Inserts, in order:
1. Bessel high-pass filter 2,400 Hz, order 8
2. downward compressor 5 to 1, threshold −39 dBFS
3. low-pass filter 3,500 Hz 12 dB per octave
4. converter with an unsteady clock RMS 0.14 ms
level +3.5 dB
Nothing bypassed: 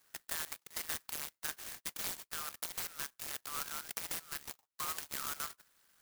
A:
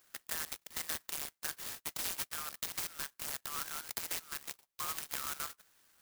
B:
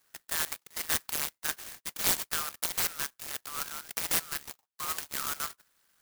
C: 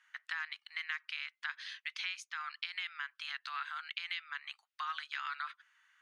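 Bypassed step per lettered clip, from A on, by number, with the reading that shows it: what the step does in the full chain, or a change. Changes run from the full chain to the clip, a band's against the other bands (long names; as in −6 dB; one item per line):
3, change in integrated loudness +1.0 LU
2, average gain reduction 6.0 dB
4, 8 kHz band −22.0 dB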